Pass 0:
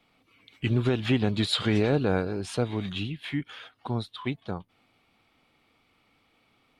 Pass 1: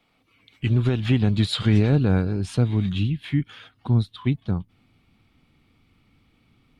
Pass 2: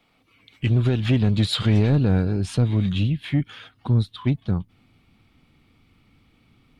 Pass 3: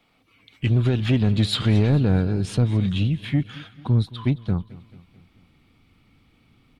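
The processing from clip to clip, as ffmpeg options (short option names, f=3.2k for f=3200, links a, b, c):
-af "asubboost=boost=6:cutoff=240"
-af "asoftclip=type=tanh:threshold=-13.5dB,volume=2.5dB"
-af "aecho=1:1:219|438|657|876:0.106|0.0551|0.0286|0.0149"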